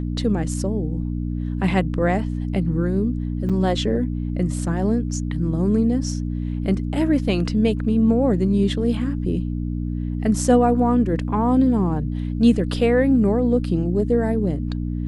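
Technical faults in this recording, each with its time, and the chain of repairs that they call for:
hum 60 Hz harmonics 5 -25 dBFS
3.49–3.50 s: dropout 6.3 ms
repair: de-hum 60 Hz, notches 5; interpolate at 3.49 s, 6.3 ms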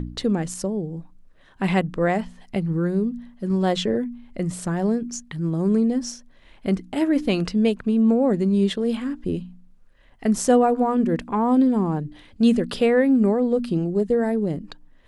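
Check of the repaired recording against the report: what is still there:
nothing left

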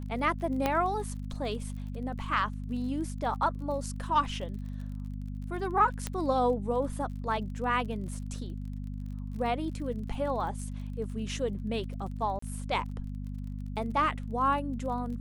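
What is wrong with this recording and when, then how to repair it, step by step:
crackle 34 per s -41 dBFS
hum 50 Hz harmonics 5 -37 dBFS
0.66 s: pop -13 dBFS
6.07 s: pop -17 dBFS
12.39–12.42 s: dropout 34 ms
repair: de-click; de-hum 50 Hz, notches 5; interpolate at 12.39 s, 34 ms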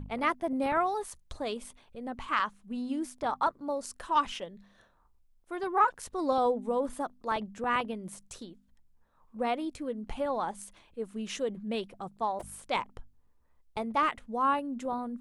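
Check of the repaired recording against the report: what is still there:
nothing left

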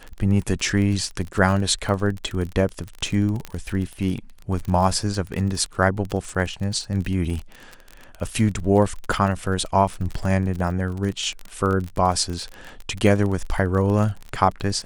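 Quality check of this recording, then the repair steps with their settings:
crackle 30 per s -26 dBFS
3.45 s: pop -16 dBFS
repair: de-click

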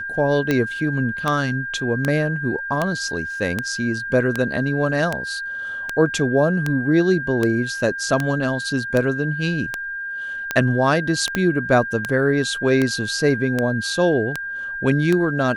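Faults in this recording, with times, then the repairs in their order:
tick 78 rpm -7 dBFS
whine 1.6 kHz -26 dBFS
11.35 s: pop -7 dBFS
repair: de-click; band-stop 1.6 kHz, Q 30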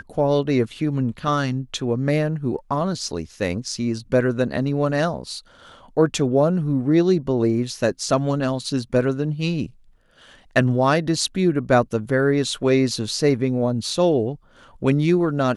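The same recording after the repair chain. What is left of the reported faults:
11.35 s: pop

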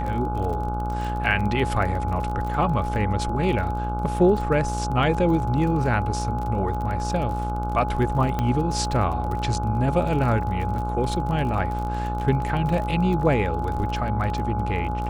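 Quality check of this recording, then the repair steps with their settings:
buzz 60 Hz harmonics 25 -28 dBFS
crackle 35 per s -30 dBFS
whine 840 Hz -29 dBFS
8.39 s: pop -12 dBFS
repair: de-click; band-stop 840 Hz, Q 30; de-hum 60 Hz, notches 25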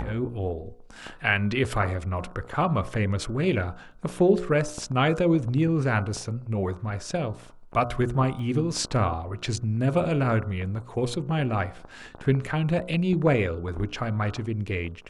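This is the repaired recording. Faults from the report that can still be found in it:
8.39 s: pop

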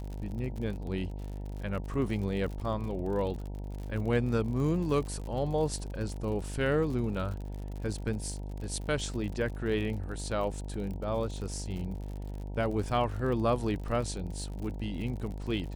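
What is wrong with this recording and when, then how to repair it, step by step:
buzz 50 Hz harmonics 19 -38 dBFS
crackle 58 per s -38 dBFS
0.51 s: dropout 2.1 ms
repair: de-click; de-hum 50 Hz, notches 19; interpolate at 0.51 s, 2.1 ms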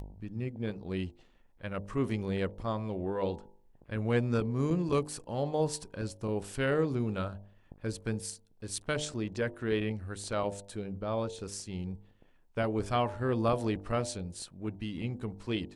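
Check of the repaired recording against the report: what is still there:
nothing left

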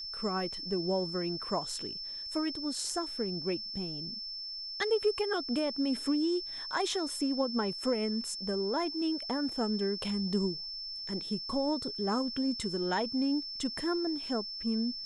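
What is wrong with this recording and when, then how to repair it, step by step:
whine 5.3 kHz -38 dBFS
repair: band-stop 5.3 kHz, Q 30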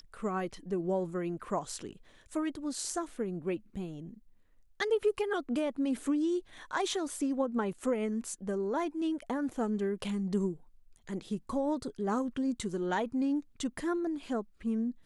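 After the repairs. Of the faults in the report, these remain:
nothing left

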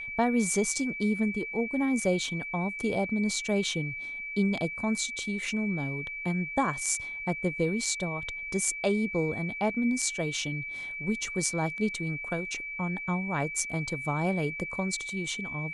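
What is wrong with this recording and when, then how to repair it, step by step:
whine 2.3 kHz -35 dBFS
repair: band-stop 2.3 kHz, Q 30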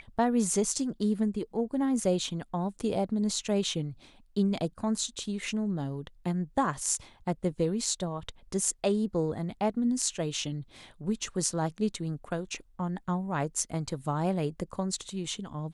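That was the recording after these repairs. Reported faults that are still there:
nothing left

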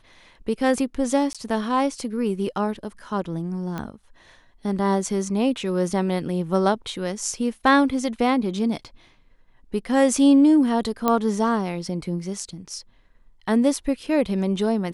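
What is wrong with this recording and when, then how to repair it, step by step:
1.33–1.35 s: dropout 16 ms
3.78 s: pop -17 dBFS
11.08 s: pop -7 dBFS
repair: de-click; interpolate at 1.33 s, 16 ms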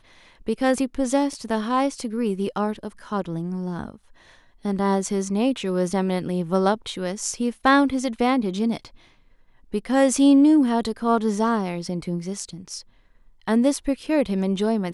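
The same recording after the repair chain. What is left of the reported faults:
3.78 s: pop

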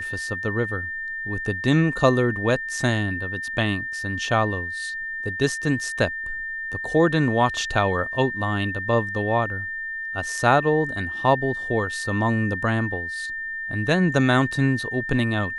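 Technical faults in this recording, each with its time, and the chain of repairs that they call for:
whine 1.8 kHz -28 dBFS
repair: band-stop 1.8 kHz, Q 30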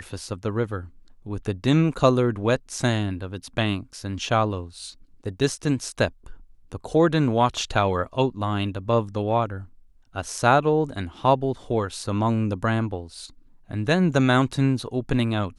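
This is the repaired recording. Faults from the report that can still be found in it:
nothing left

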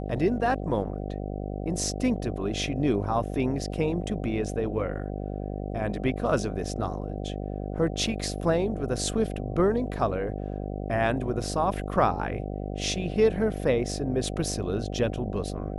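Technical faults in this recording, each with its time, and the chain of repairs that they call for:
buzz 50 Hz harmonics 15 -33 dBFS
8.07–8.08 s: dropout 5.1 ms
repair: de-hum 50 Hz, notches 15; interpolate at 8.07 s, 5.1 ms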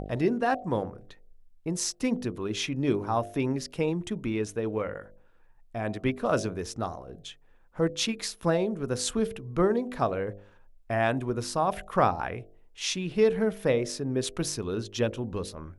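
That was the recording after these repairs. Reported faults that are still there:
nothing left

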